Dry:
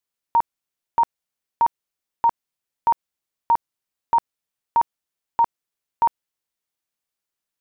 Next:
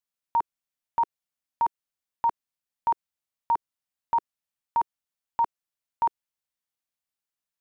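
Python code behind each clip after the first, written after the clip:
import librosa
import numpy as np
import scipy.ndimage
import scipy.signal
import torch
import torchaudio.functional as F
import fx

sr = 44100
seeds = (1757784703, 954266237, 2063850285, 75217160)

y = fx.peak_eq(x, sr, hz=390.0, db=-9.5, octaves=0.38)
y = y * 10.0 ** (-5.5 / 20.0)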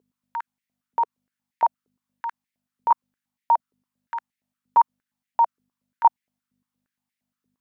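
y = fx.add_hum(x, sr, base_hz=50, snr_db=25)
y = fx.filter_held_highpass(y, sr, hz=8.6, low_hz=430.0, high_hz=2000.0)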